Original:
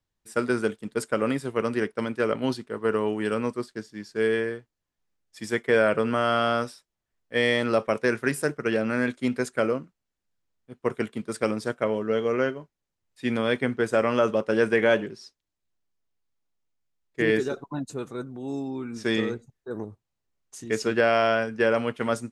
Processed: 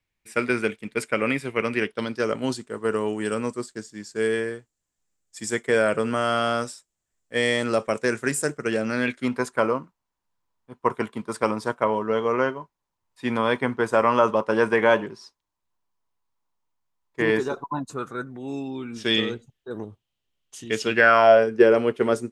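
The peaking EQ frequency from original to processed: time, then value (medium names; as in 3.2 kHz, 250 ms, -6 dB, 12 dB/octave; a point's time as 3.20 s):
peaking EQ +14.5 dB 0.55 oct
1.77 s 2.3 kHz
2.36 s 7.5 kHz
8.83 s 7.5 kHz
9.31 s 980 Hz
17.79 s 980 Hz
18.75 s 3.1 kHz
20.87 s 3.1 kHz
21.46 s 390 Hz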